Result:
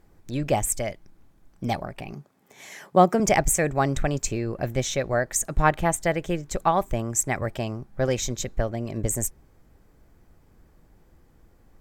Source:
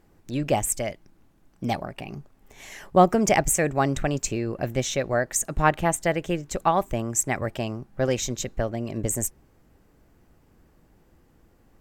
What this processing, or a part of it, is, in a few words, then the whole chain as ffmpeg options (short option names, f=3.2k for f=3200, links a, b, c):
low shelf boost with a cut just above: -filter_complex "[0:a]lowshelf=f=65:g=6,equalizer=f=270:t=o:w=0.77:g=-2,bandreject=f=2.8k:w=14,asettb=1/sr,asplit=3[a][b][c];[a]atrim=end=2.134[d];[b]atrim=start=2.13:end=3.2,asetpts=PTS-STARTPTS,afade=t=in:d=0.004:c=qsin,afade=t=out:st=1.066:d=0.004:c=qsin,highpass=f=140:w=0.5412,highpass=f=140:w=1.3066[e];[c]atrim=start=3.196[f];[d][e]acrossfade=d=0.004:c1=hsin:c2=qsin[g];[g][f]acrossfade=d=0.004:c1=qsin:c2=hsin"